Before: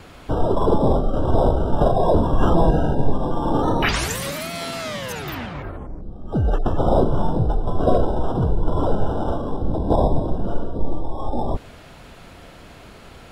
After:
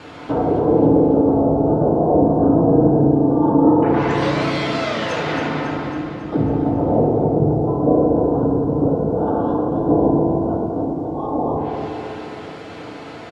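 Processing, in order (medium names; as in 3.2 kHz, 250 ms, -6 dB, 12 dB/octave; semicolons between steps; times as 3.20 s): low-pass that closes with the level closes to 520 Hz, closed at -14 dBFS; in parallel at -2 dB: compression 10:1, threshold -29 dBFS, peak gain reduction 19 dB; on the sum: bit crusher 10-bit; band-pass 160–5700 Hz; on a send: feedback delay 274 ms, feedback 56%, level -7 dB; on the sum: FDN reverb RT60 1.9 s, low-frequency decay 1.1×, high-frequency decay 0.25×, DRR -3 dB; trim -1.5 dB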